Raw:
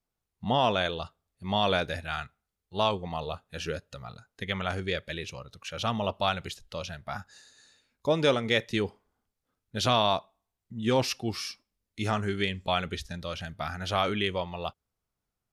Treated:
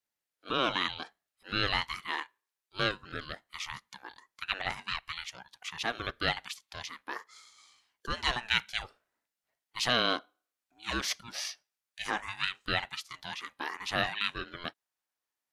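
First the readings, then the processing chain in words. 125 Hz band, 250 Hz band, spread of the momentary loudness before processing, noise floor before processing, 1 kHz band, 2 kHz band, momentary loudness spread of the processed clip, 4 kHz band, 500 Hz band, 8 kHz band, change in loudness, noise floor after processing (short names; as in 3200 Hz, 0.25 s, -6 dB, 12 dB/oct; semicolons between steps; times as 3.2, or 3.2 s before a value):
-11.0 dB, -9.5 dB, 15 LU, under -85 dBFS, -5.5 dB, +1.5 dB, 15 LU, -0.5 dB, -11.0 dB, 0.0 dB, -3.5 dB, under -85 dBFS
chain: Chebyshev high-pass 1100 Hz, order 2; ring modulator with a swept carrier 490 Hz, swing 25%, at 0.63 Hz; gain +3 dB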